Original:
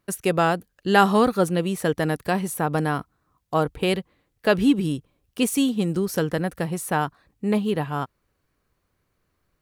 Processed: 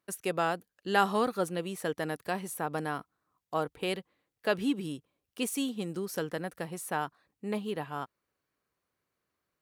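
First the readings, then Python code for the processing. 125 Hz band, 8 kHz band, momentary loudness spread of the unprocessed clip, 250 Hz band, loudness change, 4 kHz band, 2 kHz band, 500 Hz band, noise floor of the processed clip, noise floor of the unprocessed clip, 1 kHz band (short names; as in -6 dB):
-14.0 dB, -8.0 dB, 10 LU, -12.0 dB, -10.0 dB, -8.0 dB, -8.0 dB, -9.5 dB, -85 dBFS, -74 dBFS, -8.5 dB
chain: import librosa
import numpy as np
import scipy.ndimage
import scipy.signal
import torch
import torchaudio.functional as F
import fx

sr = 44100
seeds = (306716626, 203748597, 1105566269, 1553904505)

y = fx.highpass(x, sr, hz=300.0, slope=6)
y = y * 10.0 ** (-8.0 / 20.0)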